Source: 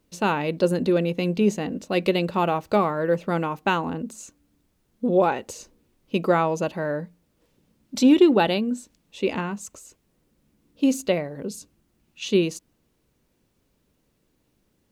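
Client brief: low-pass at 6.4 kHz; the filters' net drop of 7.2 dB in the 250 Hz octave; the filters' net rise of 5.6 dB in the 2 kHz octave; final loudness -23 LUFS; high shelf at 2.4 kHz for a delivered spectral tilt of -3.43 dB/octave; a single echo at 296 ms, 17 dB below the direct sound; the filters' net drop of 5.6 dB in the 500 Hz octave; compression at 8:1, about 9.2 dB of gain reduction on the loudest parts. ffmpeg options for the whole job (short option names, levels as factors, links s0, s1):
-af "lowpass=6400,equalizer=f=250:t=o:g=-8.5,equalizer=f=500:t=o:g=-5,equalizer=f=2000:t=o:g=4.5,highshelf=f=2400:g=7,acompressor=threshold=0.0562:ratio=8,aecho=1:1:296:0.141,volume=2.51"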